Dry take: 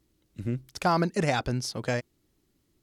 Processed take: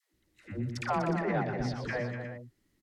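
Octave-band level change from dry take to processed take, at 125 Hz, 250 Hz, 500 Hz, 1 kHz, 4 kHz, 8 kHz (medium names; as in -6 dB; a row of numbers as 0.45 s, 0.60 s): -3.5 dB, -3.5 dB, -3.5 dB, -4.5 dB, -10.5 dB, -13.0 dB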